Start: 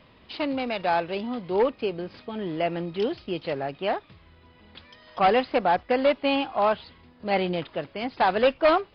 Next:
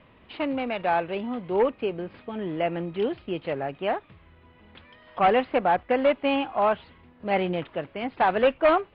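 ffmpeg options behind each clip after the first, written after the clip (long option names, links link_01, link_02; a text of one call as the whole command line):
ffmpeg -i in.wav -af "lowpass=frequency=3000:width=0.5412,lowpass=frequency=3000:width=1.3066" out.wav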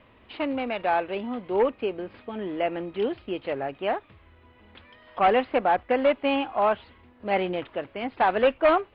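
ffmpeg -i in.wav -af "equalizer=frequency=160:width_type=o:width=0.31:gain=-12" out.wav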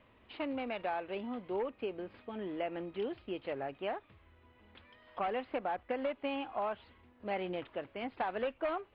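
ffmpeg -i in.wav -af "acompressor=threshold=-24dB:ratio=6,volume=-8dB" out.wav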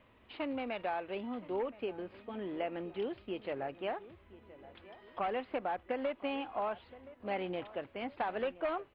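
ffmpeg -i in.wav -filter_complex "[0:a]asplit=2[link_01][link_02];[link_02]adelay=1021,lowpass=frequency=2000:poles=1,volume=-17.5dB,asplit=2[link_03][link_04];[link_04]adelay=1021,lowpass=frequency=2000:poles=1,volume=0.47,asplit=2[link_05][link_06];[link_06]adelay=1021,lowpass=frequency=2000:poles=1,volume=0.47,asplit=2[link_07][link_08];[link_08]adelay=1021,lowpass=frequency=2000:poles=1,volume=0.47[link_09];[link_01][link_03][link_05][link_07][link_09]amix=inputs=5:normalize=0" out.wav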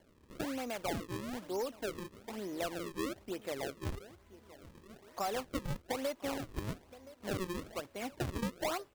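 ffmpeg -i in.wav -af "acrusher=samples=35:mix=1:aa=0.000001:lfo=1:lforange=56:lforate=1.1,volume=-1dB" out.wav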